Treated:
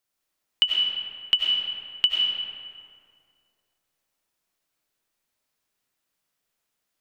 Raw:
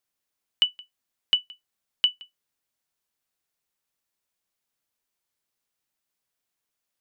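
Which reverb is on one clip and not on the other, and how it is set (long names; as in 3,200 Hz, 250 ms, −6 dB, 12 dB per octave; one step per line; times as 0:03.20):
comb and all-pass reverb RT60 2.3 s, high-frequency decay 0.55×, pre-delay 55 ms, DRR −2.5 dB
level +1 dB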